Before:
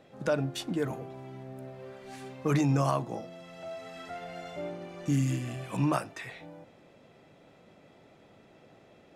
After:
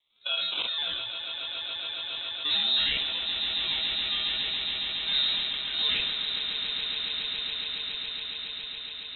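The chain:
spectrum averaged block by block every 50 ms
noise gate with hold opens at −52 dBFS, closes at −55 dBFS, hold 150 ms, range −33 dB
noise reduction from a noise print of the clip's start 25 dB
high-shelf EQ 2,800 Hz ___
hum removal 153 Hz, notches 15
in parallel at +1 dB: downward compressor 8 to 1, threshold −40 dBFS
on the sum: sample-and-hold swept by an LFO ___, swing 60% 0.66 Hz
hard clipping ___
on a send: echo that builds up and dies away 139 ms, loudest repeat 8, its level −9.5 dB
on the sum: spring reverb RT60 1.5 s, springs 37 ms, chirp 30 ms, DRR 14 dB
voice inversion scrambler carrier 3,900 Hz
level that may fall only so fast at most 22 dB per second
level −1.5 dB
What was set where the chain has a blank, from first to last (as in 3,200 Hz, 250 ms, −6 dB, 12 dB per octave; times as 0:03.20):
+11.5 dB, 18×, −21 dBFS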